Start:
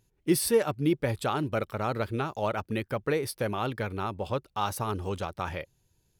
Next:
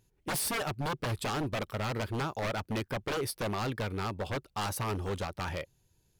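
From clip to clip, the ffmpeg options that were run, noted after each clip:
ffmpeg -i in.wav -af "aeval=exprs='0.0447*(abs(mod(val(0)/0.0447+3,4)-2)-1)':channel_layout=same" out.wav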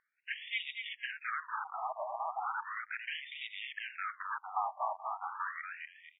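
ffmpeg -i in.wav -filter_complex "[0:a]asplit=2[link_01][link_02];[link_02]adelay=239,lowpass=frequency=2800:poles=1,volume=-4.5dB,asplit=2[link_03][link_04];[link_04]adelay=239,lowpass=frequency=2800:poles=1,volume=0.36,asplit=2[link_05][link_06];[link_06]adelay=239,lowpass=frequency=2800:poles=1,volume=0.36,asplit=2[link_07][link_08];[link_08]adelay=239,lowpass=frequency=2800:poles=1,volume=0.36,asplit=2[link_09][link_10];[link_10]adelay=239,lowpass=frequency=2800:poles=1,volume=0.36[link_11];[link_01][link_03][link_05][link_07][link_09][link_11]amix=inputs=6:normalize=0,asplit=2[link_12][link_13];[link_13]acompressor=threshold=-40dB:ratio=6,volume=0.5dB[link_14];[link_12][link_14]amix=inputs=2:normalize=0,afftfilt=real='re*between(b*sr/1024,840*pow(2700/840,0.5+0.5*sin(2*PI*0.36*pts/sr))/1.41,840*pow(2700/840,0.5+0.5*sin(2*PI*0.36*pts/sr))*1.41)':imag='im*between(b*sr/1024,840*pow(2700/840,0.5+0.5*sin(2*PI*0.36*pts/sr))/1.41,840*pow(2700/840,0.5+0.5*sin(2*PI*0.36*pts/sr))*1.41)':win_size=1024:overlap=0.75" out.wav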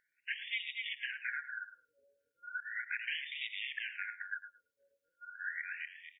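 ffmpeg -i in.wav -filter_complex "[0:a]afftfilt=real='re*(1-between(b*sr/4096,570,1400))':imag='im*(1-between(b*sr/4096,570,1400))':win_size=4096:overlap=0.75,alimiter=level_in=5dB:limit=-24dB:level=0:latency=1:release=401,volume=-5dB,asplit=2[link_01][link_02];[link_02]adelay=108,lowpass=frequency=2000:poles=1,volume=-11dB,asplit=2[link_03][link_04];[link_04]adelay=108,lowpass=frequency=2000:poles=1,volume=0.16[link_05];[link_01][link_03][link_05]amix=inputs=3:normalize=0,volume=3dB" out.wav

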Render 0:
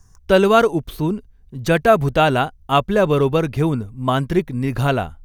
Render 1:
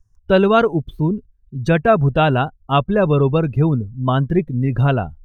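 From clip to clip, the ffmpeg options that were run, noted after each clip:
ffmpeg -i in.wav -af "equalizer=frequency=130:width_type=o:width=1.4:gain=6,afftdn=noise_reduction=20:noise_floor=-29,volume=-1dB" out.wav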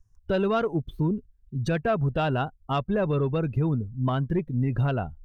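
ffmpeg -i in.wav -af "asoftclip=type=tanh:threshold=-5dB,alimiter=limit=-14dB:level=0:latency=1:release=332,volume=-3dB" out.wav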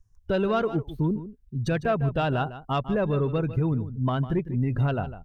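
ffmpeg -i in.wav -af "aecho=1:1:152:0.211" out.wav

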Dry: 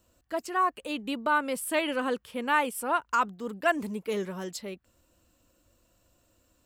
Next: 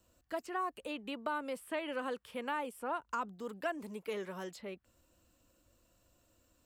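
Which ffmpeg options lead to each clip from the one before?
ffmpeg -i in.wav -filter_complex "[0:a]acrossover=split=400|910|3100[link_01][link_02][link_03][link_04];[link_01]acompressor=threshold=-44dB:ratio=4[link_05];[link_02]acompressor=threshold=-35dB:ratio=4[link_06];[link_03]acompressor=threshold=-39dB:ratio=4[link_07];[link_04]acompressor=threshold=-54dB:ratio=4[link_08];[link_05][link_06][link_07][link_08]amix=inputs=4:normalize=0,volume=-3.5dB" out.wav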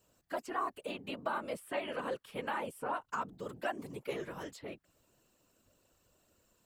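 ffmpeg -i in.wav -af "lowshelf=frequency=150:gain=-5.5,afftfilt=real='hypot(re,im)*cos(2*PI*random(0))':imag='hypot(re,im)*sin(2*PI*random(1))':win_size=512:overlap=0.75,volume=6.5dB" out.wav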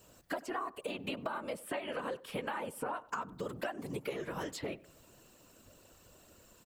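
ffmpeg -i in.wav -filter_complex "[0:a]acompressor=threshold=-46dB:ratio=10,asplit=2[link_01][link_02];[link_02]adelay=96,lowpass=frequency=1500:poles=1,volume=-19dB,asplit=2[link_03][link_04];[link_04]adelay=96,lowpass=frequency=1500:poles=1,volume=0.44,asplit=2[link_05][link_06];[link_06]adelay=96,lowpass=frequency=1500:poles=1,volume=0.44[link_07];[link_01][link_03][link_05][link_07]amix=inputs=4:normalize=0,volume=11dB" out.wav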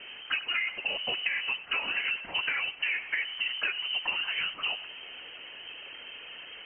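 ffmpeg -i in.wav -af "aeval=exprs='val(0)+0.5*0.00631*sgn(val(0))':channel_layout=same,lowpass=frequency=2700:width_type=q:width=0.5098,lowpass=frequency=2700:width_type=q:width=0.6013,lowpass=frequency=2700:width_type=q:width=0.9,lowpass=frequency=2700:width_type=q:width=2.563,afreqshift=-3200,volume=6dB" out.wav

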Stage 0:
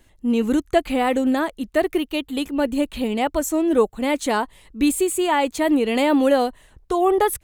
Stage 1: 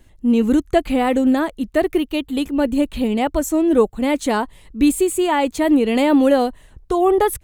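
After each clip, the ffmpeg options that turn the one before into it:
ffmpeg -i in.wav -af "lowshelf=frequency=330:gain=7" out.wav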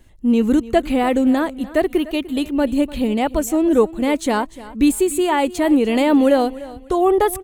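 ffmpeg -i in.wav -af "aecho=1:1:297|594|891:0.126|0.0365|0.0106" out.wav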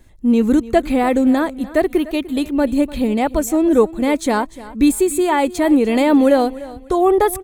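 ffmpeg -i in.wav -af "bandreject=frequency=2900:width=8.5,volume=1.5dB" out.wav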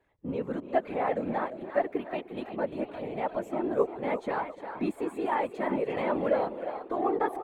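ffmpeg -i in.wav -filter_complex "[0:a]acrossover=split=340 2700:gain=0.1 1 0.0631[link_01][link_02][link_03];[link_01][link_02][link_03]amix=inputs=3:normalize=0,asplit=5[link_04][link_05][link_06][link_07][link_08];[link_05]adelay=350,afreqshift=55,volume=-10dB[link_09];[link_06]adelay=700,afreqshift=110,volume=-17.7dB[link_10];[link_07]adelay=1050,afreqshift=165,volume=-25.5dB[link_11];[link_08]adelay=1400,afreqshift=220,volume=-33.2dB[link_12];[link_04][link_09][link_10][link_11][link_12]amix=inputs=5:normalize=0,afftfilt=real='hypot(re,im)*cos(2*PI*random(0))':imag='hypot(re,im)*sin(2*PI*random(1))':win_size=512:overlap=0.75,volume=-5dB" out.wav

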